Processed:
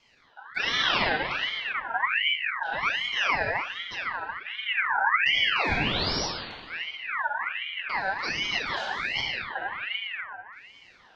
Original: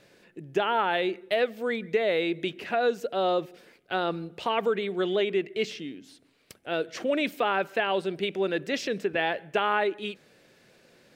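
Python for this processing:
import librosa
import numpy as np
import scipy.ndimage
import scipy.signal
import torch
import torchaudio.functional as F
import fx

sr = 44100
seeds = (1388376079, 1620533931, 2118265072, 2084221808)

y = fx.rotary(x, sr, hz=0.8)
y = fx.filter_lfo_lowpass(y, sr, shape='square', hz=0.38, low_hz=340.0, high_hz=3100.0, q=1.3)
y = fx.spec_paint(y, sr, seeds[0], shape='rise', start_s=4.75, length_s=1.51, low_hz=210.0, high_hz=3400.0, level_db=-29.0)
y = fx.rev_plate(y, sr, seeds[1], rt60_s=2.2, hf_ratio=0.5, predelay_ms=0, drr_db=-4.5)
y = fx.ring_lfo(y, sr, carrier_hz=1900.0, swing_pct=40, hz=1.3)
y = F.gain(torch.from_numpy(y), -1.5).numpy()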